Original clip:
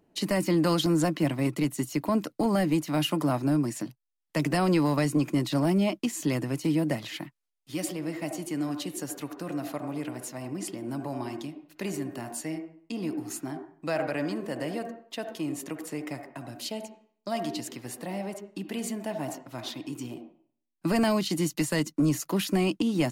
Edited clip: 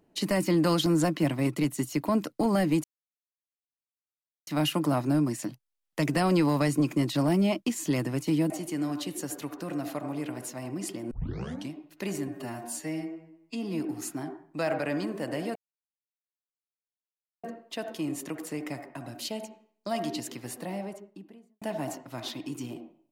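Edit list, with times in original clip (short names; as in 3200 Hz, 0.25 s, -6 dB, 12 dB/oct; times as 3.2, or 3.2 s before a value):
2.84 insert silence 1.63 s
6.87–8.29 cut
10.9 tape start 0.59 s
12.07–13.08 stretch 1.5×
14.84 insert silence 1.88 s
17.93–19.02 studio fade out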